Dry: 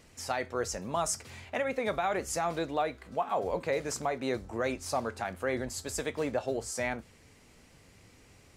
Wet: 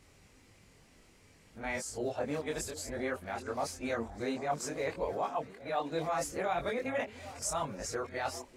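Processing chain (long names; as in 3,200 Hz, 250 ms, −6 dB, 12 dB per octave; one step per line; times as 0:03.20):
played backwards from end to start
echo through a band-pass that steps 395 ms, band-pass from 290 Hz, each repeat 1.4 octaves, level −11 dB
multi-voice chorus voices 4, 0.59 Hz, delay 23 ms, depth 3.9 ms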